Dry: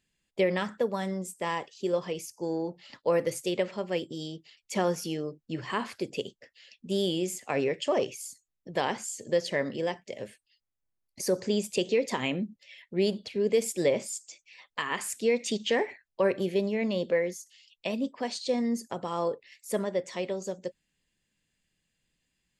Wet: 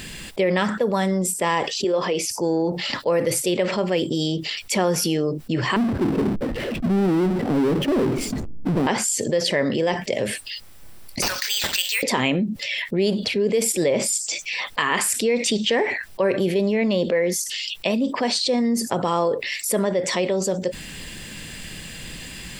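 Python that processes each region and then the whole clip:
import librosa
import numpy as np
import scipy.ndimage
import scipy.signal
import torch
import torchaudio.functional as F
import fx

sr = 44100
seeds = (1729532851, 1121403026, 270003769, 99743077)

y = fx.chain(x, sr, fx.highpass(hz=250.0, slope=12),
    fx.air_absorb(metres=75.0), at=(1.84, 2.3))
y = fx.chain(y, sr, fx.lowpass_res(hz=270.0, q=1.9),
    fx.power_curve(exponent=0.5),
    fx.sustainer(db_per_s=140.0), at=(5.76, 8.87))
y = fx.chain(y, sr, fx.highpass(hz=1400.0, slope=24),
    fx.resample_bad(factor=4, down='none', up='hold'), at=(11.22, 12.03))
y = fx.notch(y, sr, hz=6600.0, q=9.3)
y = fx.env_flatten(y, sr, amount_pct=70)
y = F.gain(torch.from_numpy(y), 2.5).numpy()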